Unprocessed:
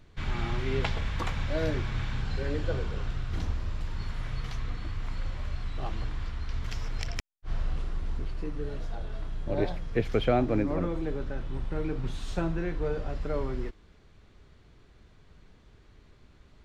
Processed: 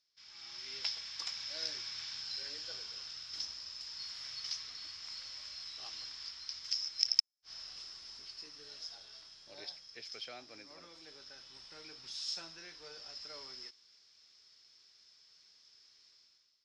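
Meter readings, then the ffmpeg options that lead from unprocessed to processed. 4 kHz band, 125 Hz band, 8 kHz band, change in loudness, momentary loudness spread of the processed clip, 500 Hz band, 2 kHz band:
+7.5 dB, under -35 dB, no reading, -6.5 dB, 14 LU, -25.0 dB, -11.5 dB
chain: -af "dynaudnorm=f=110:g=9:m=6.68,bandpass=f=5200:t=q:w=20:csg=0,volume=2.82"

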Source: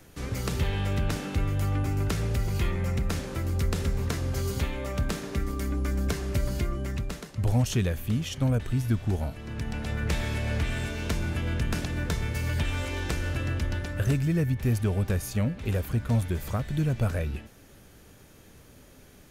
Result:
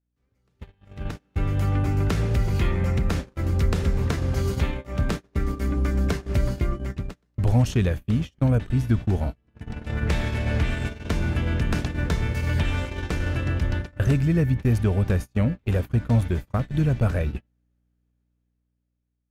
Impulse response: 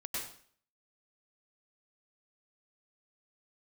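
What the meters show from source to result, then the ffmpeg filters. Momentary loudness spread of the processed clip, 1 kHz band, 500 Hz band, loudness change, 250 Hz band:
8 LU, +3.0 dB, +3.5 dB, +4.5 dB, +4.0 dB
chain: -af "aemphasis=mode=reproduction:type=cd,aeval=exprs='val(0)+0.0141*(sin(2*PI*60*n/s)+sin(2*PI*2*60*n/s)/2+sin(2*PI*3*60*n/s)/3+sin(2*PI*4*60*n/s)/4+sin(2*PI*5*60*n/s)/5)':c=same,dynaudnorm=f=270:g=9:m=2.82,agate=range=0.0158:threshold=0.1:ratio=16:detection=peak,volume=0.596"

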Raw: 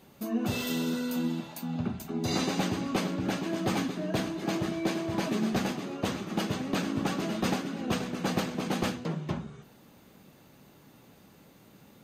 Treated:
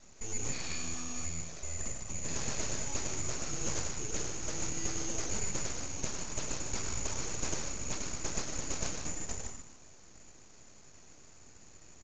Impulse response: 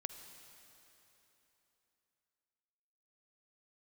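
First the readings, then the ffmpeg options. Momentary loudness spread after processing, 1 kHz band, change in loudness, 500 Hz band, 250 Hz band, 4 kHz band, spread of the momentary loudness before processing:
21 LU, -10.0 dB, -5.5 dB, -10.5 dB, -15.5 dB, -5.0 dB, 4 LU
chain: -af "acompressor=threshold=0.00794:ratio=1.5,lowpass=f=3100:t=q:w=0.5098,lowpass=f=3100:t=q:w=0.6013,lowpass=f=3100:t=q:w=0.9,lowpass=f=3100:t=q:w=2.563,afreqshift=-3700,aecho=1:1:103|104|151|183:0.422|0.282|0.447|0.15,aresample=16000,aeval=exprs='abs(val(0))':c=same,aresample=44100,volume=1.19"

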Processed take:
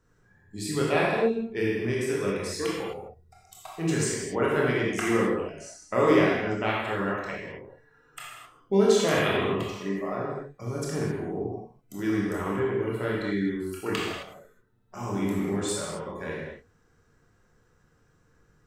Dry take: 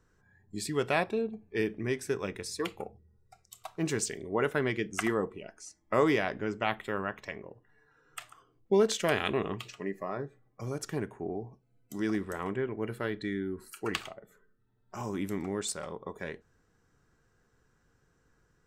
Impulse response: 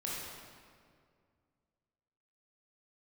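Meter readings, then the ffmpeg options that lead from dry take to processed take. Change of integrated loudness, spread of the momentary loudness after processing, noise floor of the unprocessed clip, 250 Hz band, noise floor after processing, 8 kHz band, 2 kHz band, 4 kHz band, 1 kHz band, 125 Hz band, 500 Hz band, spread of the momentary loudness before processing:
+5.5 dB, 18 LU, -71 dBFS, +6.5 dB, -65 dBFS, +4.0 dB, +5.0 dB, +4.5 dB, +5.0 dB, +7.0 dB, +5.5 dB, 17 LU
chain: -filter_complex "[1:a]atrim=start_sample=2205,afade=t=out:st=0.32:d=0.01,atrim=end_sample=14553[s0];[0:a][s0]afir=irnorm=-1:irlink=0,volume=1.41"

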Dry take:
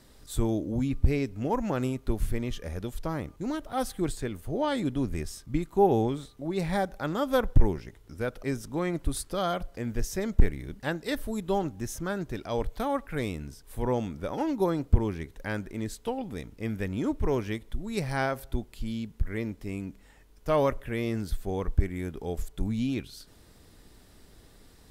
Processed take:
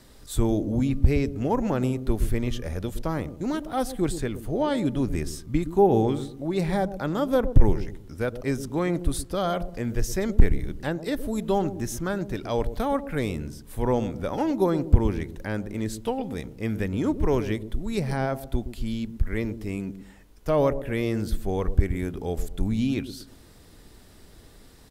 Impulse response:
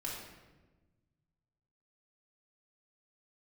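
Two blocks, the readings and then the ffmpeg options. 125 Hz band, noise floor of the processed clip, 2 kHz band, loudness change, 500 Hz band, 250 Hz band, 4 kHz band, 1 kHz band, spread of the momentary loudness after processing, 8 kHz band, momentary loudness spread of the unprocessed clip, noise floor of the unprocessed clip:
+4.5 dB, -51 dBFS, +1.0 dB, +4.0 dB, +4.0 dB, +4.5 dB, +2.0 dB, +2.0 dB, 9 LU, +3.0 dB, 9 LU, -56 dBFS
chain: -filter_complex "[0:a]acrossover=split=710[s0][s1];[s0]aecho=1:1:118|236|354|472:0.316|0.108|0.0366|0.0124[s2];[s1]alimiter=level_in=1.41:limit=0.0631:level=0:latency=1:release=260,volume=0.708[s3];[s2][s3]amix=inputs=2:normalize=0,volume=1.58"

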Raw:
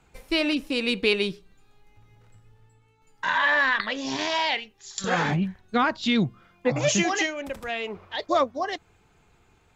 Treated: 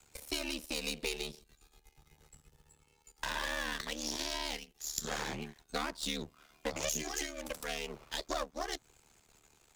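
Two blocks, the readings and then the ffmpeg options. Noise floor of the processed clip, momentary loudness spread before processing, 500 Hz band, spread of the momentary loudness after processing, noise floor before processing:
-70 dBFS, 10 LU, -14.0 dB, 6 LU, -62 dBFS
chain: -filter_complex "[0:a]aeval=exprs='if(lt(val(0),0),0.251*val(0),val(0))':c=same,bass=f=250:g=-4,treble=f=4000:g=15,aeval=exprs='val(0)*sin(2*PI*37*n/s)':c=same,acrossover=split=230|490[s0][s1][s2];[s0]acompressor=threshold=0.00447:ratio=4[s3];[s1]acompressor=threshold=0.00562:ratio=4[s4];[s2]acompressor=threshold=0.0158:ratio=4[s5];[s3][s4][s5]amix=inputs=3:normalize=0"

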